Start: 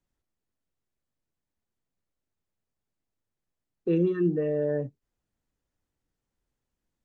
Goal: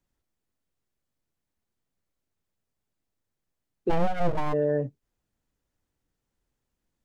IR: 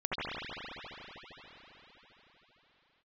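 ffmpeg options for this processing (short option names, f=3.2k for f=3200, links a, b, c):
-filter_complex "[0:a]asplit=3[a][b][c];[a]afade=t=out:st=3.89:d=0.02[d];[b]aeval=exprs='abs(val(0))':c=same,afade=t=in:st=3.89:d=0.02,afade=t=out:st=4.52:d=0.02[e];[c]afade=t=in:st=4.52:d=0.02[f];[d][e][f]amix=inputs=3:normalize=0,volume=2.5dB"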